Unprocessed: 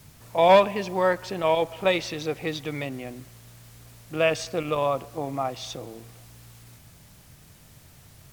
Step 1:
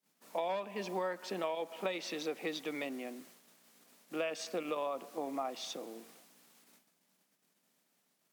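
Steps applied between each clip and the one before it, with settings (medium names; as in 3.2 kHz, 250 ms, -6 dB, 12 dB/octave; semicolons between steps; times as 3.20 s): steep high-pass 190 Hz 48 dB/octave; gate -52 dBFS, range -27 dB; compression 20:1, threshold -26 dBFS, peak gain reduction 16.5 dB; trim -6 dB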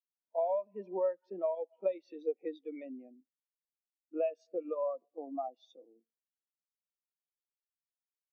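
spectral contrast expander 2.5:1; trim +1 dB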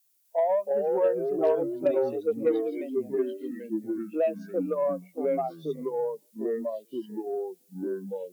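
added noise violet -76 dBFS; ever faster or slower copies 255 ms, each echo -3 st, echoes 3; Chebyshev shaper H 5 -29 dB, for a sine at -20.5 dBFS; trim +6.5 dB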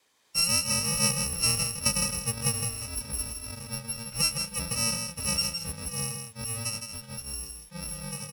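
bit-reversed sample order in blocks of 128 samples; distance through air 52 m; delay 161 ms -6.5 dB; trim +5 dB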